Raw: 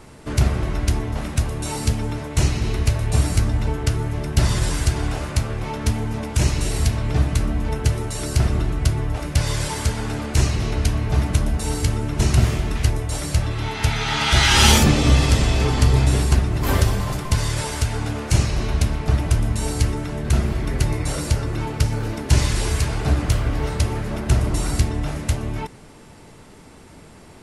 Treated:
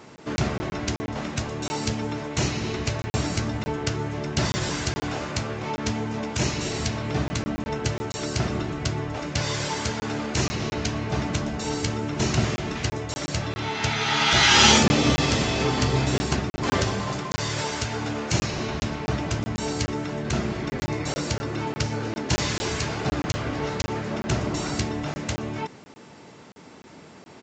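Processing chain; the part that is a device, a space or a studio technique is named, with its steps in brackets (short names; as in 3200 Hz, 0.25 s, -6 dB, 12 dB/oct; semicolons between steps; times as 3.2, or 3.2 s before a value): call with lost packets (HPF 160 Hz 12 dB/oct; downsampling 16000 Hz; packet loss packets of 20 ms random)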